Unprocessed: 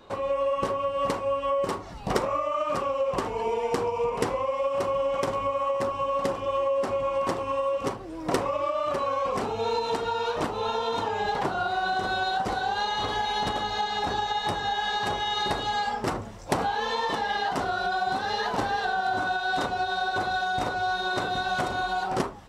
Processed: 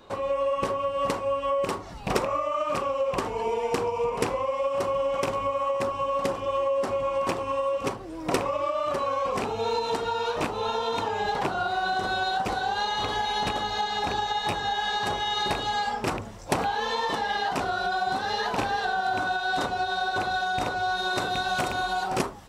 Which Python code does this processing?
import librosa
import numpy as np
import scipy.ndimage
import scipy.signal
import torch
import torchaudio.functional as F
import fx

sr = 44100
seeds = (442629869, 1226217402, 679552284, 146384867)

y = fx.rattle_buzz(x, sr, strikes_db=-31.0, level_db=-21.0)
y = fx.high_shelf(y, sr, hz=6200.0, db=fx.steps((0.0, 3.5), (20.96, 9.5)))